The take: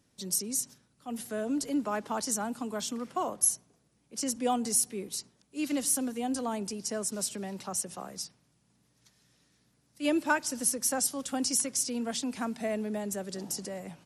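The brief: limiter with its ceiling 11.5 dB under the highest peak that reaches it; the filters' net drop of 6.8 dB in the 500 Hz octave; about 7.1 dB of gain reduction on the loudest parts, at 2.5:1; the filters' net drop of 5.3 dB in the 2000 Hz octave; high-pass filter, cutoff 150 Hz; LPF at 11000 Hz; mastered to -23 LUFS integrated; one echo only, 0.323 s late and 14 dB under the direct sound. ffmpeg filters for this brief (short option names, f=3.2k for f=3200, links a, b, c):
-af "highpass=150,lowpass=11k,equalizer=f=500:t=o:g=-8.5,equalizer=f=2k:t=o:g=-7.5,acompressor=threshold=-34dB:ratio=2.5,alimiter=level_in=8.5dB:limit=-24dB:level=0:latency=1,volume=-8.5dB,aecho=1:1:323:0.2,volume=18dB"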